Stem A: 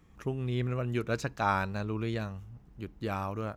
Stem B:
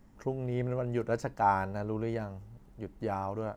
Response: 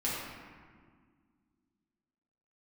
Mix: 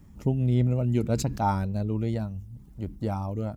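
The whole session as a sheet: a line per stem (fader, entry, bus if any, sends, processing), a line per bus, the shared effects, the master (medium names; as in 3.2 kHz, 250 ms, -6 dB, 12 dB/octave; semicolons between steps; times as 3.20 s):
-6.5 dB, 0.00 s, no send, resonant low shelf 380 Hz +13.5 dB, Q 1.5; decay stretcher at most 84 dB/s; auto duck -7 dB, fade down 2.00 s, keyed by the second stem
-0.5 dB, 0.5 ms, no send, reverb removal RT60 0.68 s; peaking EQ 81 Hz +14 dB 0.75 oct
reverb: none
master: treble shelf 5.3 kHz +9.5 dB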